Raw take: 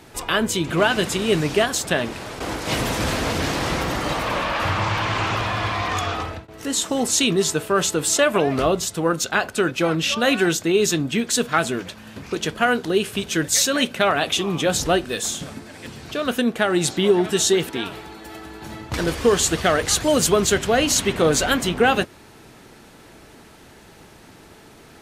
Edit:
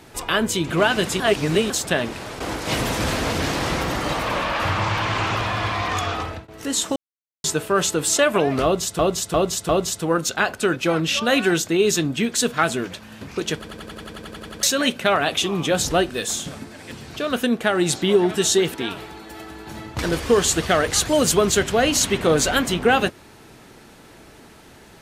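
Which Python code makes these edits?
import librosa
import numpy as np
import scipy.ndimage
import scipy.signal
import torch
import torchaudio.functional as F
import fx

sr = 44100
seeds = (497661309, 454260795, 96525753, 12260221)

y = fx.edit(x, sr, fx.reverse_span(start_s=1.2, length_s=0.5),
    fx.silence(start_s=6.96, length_s=0.48),
    fx.repeat(start_s=8.64, length_s=0.35, count=4),
    fx.stutter_over(start_s=12.5, slice_s=0.09, count=12), tone=tone)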